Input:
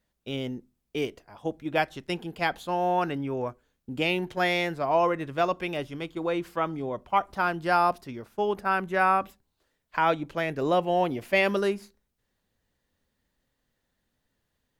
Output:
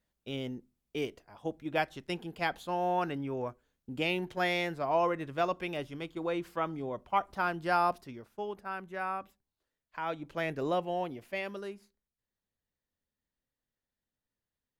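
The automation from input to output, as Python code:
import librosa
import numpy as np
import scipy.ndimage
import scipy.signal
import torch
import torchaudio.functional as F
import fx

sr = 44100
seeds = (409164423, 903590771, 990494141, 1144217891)

y = fx.gain(x, sr, db=fx.line((7.97, -5.0), (8.61, -13.0), (10.02, -13.0), (10.46, -4.0), (11.52, -15.0)))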